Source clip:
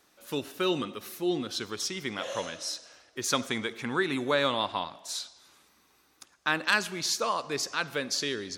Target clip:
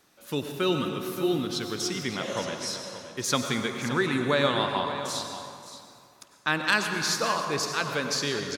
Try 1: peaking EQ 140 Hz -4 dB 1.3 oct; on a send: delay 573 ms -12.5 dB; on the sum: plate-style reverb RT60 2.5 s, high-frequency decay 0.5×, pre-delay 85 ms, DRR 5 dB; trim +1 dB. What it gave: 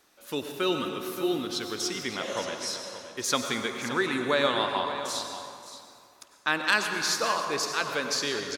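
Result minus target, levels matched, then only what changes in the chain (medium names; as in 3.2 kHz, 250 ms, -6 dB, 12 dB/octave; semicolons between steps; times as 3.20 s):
125 Hz band -8.0 dB
change: peaking EQ 140 Hz +6 dB 1.3 oct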